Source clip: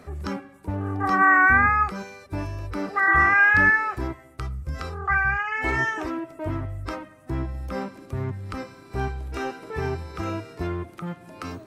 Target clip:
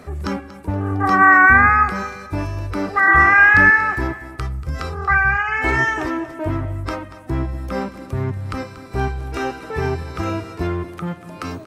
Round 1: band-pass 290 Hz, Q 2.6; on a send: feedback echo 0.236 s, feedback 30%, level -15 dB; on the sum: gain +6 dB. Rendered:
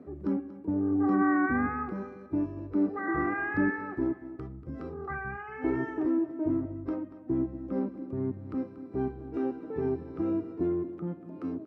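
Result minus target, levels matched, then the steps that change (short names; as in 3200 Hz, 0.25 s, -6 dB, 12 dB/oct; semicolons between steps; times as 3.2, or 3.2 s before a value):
250 Hz band +13.0 dB
remove: band-pass 290 Hz, Q 2.6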